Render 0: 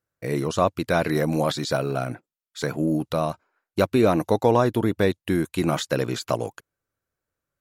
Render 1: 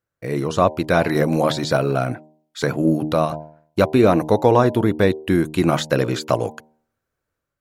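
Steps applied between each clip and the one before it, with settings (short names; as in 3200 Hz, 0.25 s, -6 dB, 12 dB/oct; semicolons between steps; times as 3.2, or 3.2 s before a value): high shelf 4300 Hz -5.5 dB; de-hum 77.07 Hz, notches 13; AGC gain up to 5 dB; gain +1.5 dB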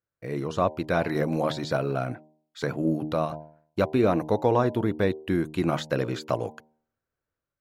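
bell 10000 Hz -6.5 dB 1.5 oct; gain -7.5 dB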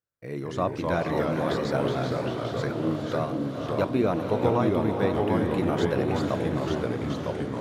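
diffused feedback echo 0.484 s, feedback 56%, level -6 dB; echoes that change speed 0.184 s, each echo -2 st, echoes 2; gain -3 dB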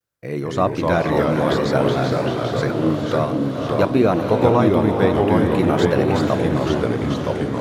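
vibrato 0.54 Hz 41 cents; gain +8 dB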